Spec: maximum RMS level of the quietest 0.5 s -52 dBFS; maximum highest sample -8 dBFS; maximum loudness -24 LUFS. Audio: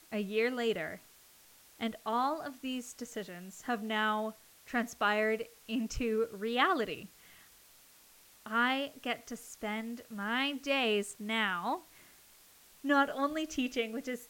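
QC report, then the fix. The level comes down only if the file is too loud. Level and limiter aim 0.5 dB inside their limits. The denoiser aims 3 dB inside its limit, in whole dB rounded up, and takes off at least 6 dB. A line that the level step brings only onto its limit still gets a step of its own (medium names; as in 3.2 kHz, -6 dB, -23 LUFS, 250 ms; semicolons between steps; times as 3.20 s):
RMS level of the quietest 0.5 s -60 dBFS: pass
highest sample -13.5 dBFS: pass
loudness -33.5 LUFS: pass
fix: none needed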